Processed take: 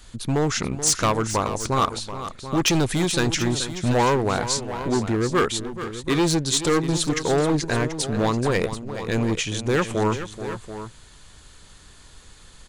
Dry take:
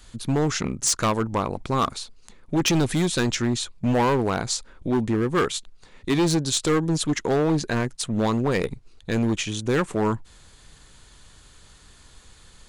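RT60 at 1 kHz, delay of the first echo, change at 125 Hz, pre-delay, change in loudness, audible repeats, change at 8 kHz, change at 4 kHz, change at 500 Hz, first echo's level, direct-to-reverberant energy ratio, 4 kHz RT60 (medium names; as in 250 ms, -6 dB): no reverb, 430 ms, +1.0 dB, no reverb, +1.0 dB, 2, +2.5 dB, +2.5 dB, +1.5 dB, -11.5 dB, no reverb, no reverb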